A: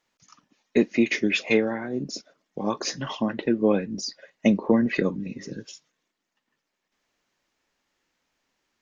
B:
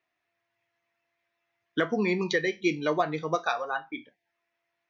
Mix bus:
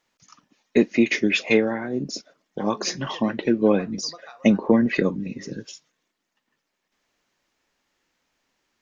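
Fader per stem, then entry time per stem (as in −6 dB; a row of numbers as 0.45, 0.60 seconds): +2.5, −16.5 decibels; 0.00, 0.80 seconds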